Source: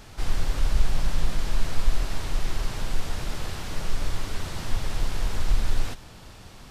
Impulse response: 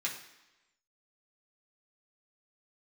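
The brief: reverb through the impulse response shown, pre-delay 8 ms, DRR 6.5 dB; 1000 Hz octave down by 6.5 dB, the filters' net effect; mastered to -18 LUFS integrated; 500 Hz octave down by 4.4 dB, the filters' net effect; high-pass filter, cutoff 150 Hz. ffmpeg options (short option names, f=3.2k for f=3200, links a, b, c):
-filter_complex "[0:a]highpass=150,equalizer=f=500:t=o:g=-3.5,equalizer=f=1k:t=o:g=-7.5,asplit=2[a][b];[1:a]atrim=start_sample=2205,adelay=8[c];[b][c]afir=irnorm=-1:irlink=0,volume=-10.5dB[d];[a][d]amix=inputs=2:normalize=0,volume=19.5dB"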